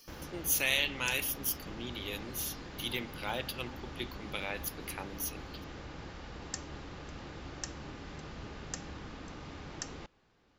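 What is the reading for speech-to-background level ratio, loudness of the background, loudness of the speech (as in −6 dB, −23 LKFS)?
10.0 dB, −45.0 LKFS, −35.0 LKFS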